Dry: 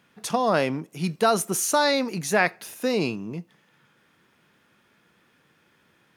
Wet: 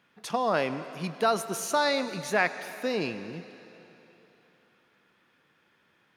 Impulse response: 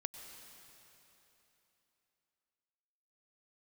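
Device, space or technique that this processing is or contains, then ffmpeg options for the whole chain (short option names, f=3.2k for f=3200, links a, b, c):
filtered reverb send: -filter_complex "[0:a]asplit=2[a][b];[b]highpass=f=440:p=1,lowpass=5.5k[c];[1:a]atrim=start_sample=2205[d];[c][d]afir=irnorm=-1:irlink=0,volume=2.5dB[e];[a][e]amix=inputs=2:normalize=0,volume=-9dB"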